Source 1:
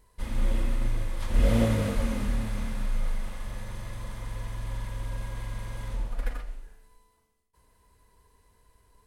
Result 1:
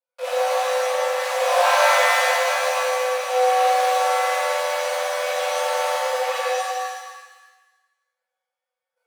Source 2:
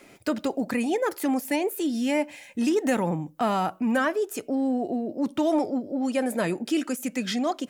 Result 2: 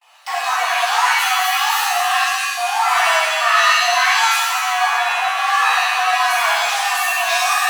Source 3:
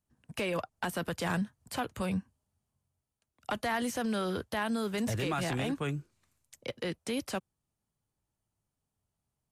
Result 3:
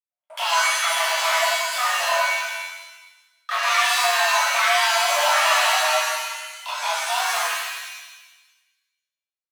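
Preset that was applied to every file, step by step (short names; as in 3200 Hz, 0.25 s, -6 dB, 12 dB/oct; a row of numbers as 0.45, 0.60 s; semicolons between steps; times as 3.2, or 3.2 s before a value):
in parallel at -11.5 dB: fuzz box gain 40 dB, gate -41 dBFS; on the sum: bell 800 Hz +6.5 dB 0.21 oct; frequency shift +480 Hz; gate -55 dBFS, range -28 dB; bell 2900 Hz +5.5 dB 2.4 oct; shimmer reverb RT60 1.1 s, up +7 st, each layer -2 dB, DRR -7.5 dB; gain -9.5 dB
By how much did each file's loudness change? +11.5, +11.0, +14.5 LU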